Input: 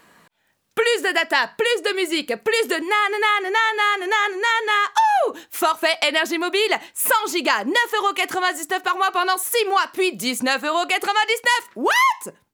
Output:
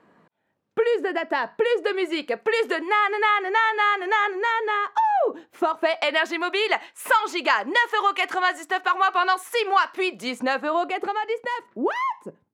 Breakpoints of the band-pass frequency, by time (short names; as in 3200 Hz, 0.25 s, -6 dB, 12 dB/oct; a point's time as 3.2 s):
band-pass, Q 0.53
1.18 s 310 Hz
2.25 s 860 Hz
4.12 s 860 Hz
4.98 s 330 Hz
5.66 s 330 Hz
6.24 s 1200 Hz
10.04 s 1200 Hz
11.22 s 230 Hz